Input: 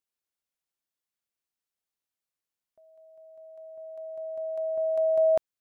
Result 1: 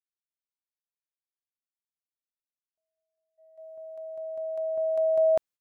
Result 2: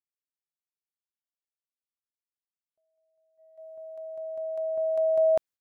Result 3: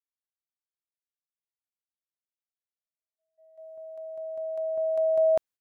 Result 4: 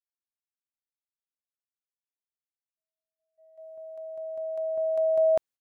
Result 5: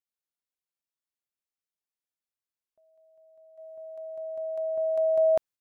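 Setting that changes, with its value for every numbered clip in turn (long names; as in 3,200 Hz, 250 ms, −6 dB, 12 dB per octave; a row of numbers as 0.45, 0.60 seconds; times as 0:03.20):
noise gate, range: −32, −20, −59, −45, −7 decibels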